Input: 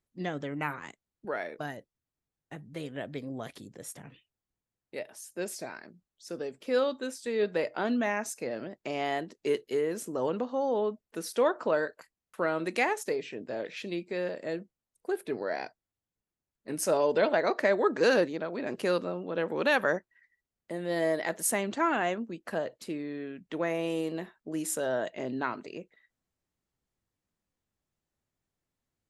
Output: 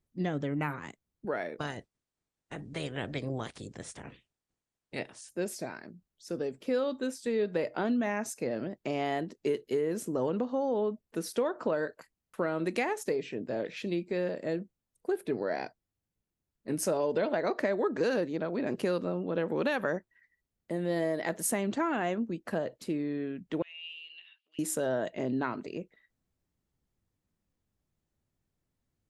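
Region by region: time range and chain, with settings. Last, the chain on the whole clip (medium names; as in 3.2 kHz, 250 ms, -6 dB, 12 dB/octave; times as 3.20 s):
1.58–5.28 s: spectral peaks clipped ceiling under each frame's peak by 16 dB + brick-wall FIR low-pass 10 kHz
23.62–24.59 s: resonant high shelf 5.7 kHz -11.5 dB, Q 1.5 + compression 4:1, threshold -49 dBFS + resonant high-pass 2.8 kHz, resonance Q 15
whole clip: bass shelf 380 Hz +9 dB; compression, threshold -24 dBFS; trim -1.5 dB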